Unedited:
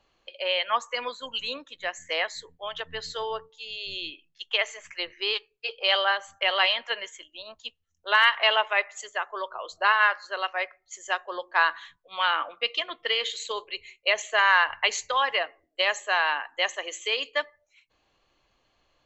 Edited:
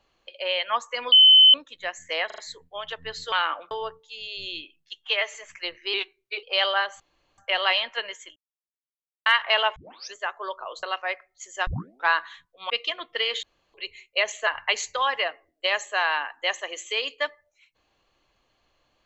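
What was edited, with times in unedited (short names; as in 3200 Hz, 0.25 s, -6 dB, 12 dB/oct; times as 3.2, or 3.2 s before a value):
1.12–1.54 bleep 3050 Hz -9.5 dBFS
2.26 stutter 0.04 s, 4 plays
4.43–4.7 stretch 1.5×
5.29–5.74 speed 91%
6.31 insert room tone 0.38 s
7.29–8.19 mute
8.69 tape start 0.38 s
9.76–10.34 cut
11.18 tape start 0.41 s
12.21–12.6 move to 3.2
13.33–13.64 room tone
14.37–14.62 cut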